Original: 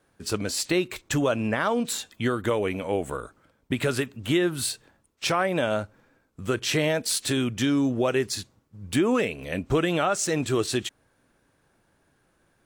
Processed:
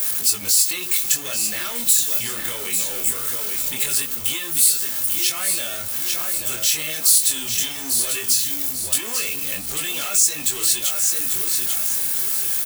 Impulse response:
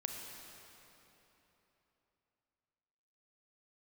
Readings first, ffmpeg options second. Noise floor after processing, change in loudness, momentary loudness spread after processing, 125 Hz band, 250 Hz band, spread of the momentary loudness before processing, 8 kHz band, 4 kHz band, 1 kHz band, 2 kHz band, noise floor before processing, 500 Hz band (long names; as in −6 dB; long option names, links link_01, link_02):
−29 dBFS, +7.5 dB, 7 LU, −11.5 dB, −13.0 dB, 9 LU, +16.0 dB, +8.0 dB, −6.5 dB, +1.0 dB, −68 dBFS, −12.0 dB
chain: -filter_complex "[0:a]aeval=exprs='val(0)+0.5*0.0237*sgn(val(0))':channel_layout=same,aecho=1:1:841|1682|2523|3364:0.355|0.11|0.0341|0.0106,acrossover=split=1800[link_01][link_02];[link_01]asoftclip=type=tanh:threshold=-26.5dB[link_03];[link_02]aecho=1:1:2.3:0.66[link_04];[link_03][link_04]amix=inputs=2:normalize=0,highshelf=frequency=11000:gain=10.5,acompressor=threshold=-28dB:ratio=2.5,crystalizer=i=9.5:c=0,flanger=delay=20:depth=6.6:speed=0.2,volume=-4.5dB"